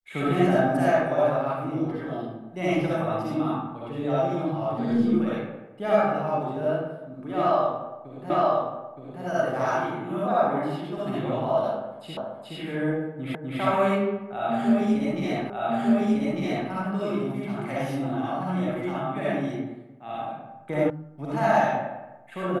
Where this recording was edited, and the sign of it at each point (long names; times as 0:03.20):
0:08.30: the same again, the last 0.92 s
0:12.17: the same again, the last 0.42 s
0:13.35: the same again, the last 0.25 s
0:15.50: the same again, the last 1.2 s
0:20.90: cut off before it has died away